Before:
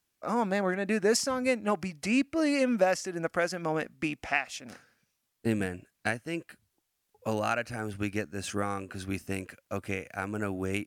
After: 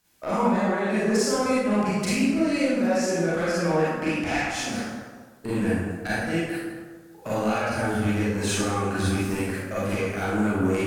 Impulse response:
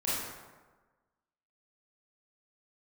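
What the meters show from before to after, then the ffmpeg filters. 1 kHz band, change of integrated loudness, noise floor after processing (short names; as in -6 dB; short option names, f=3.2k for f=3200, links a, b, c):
+5.5 dB, +6.0 dB, -48 dBFS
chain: -filter_complex "[0:a]acompressor=threshold=-36dB:ratio=10,asoftclip=type=tanh:threshold=-33dB[a];[1:a]atrim=start_sample=2205,asetrate=37926,aresample=44100[b];[a][b]afir=irnorm=-1:irlink=0,volume=9dB"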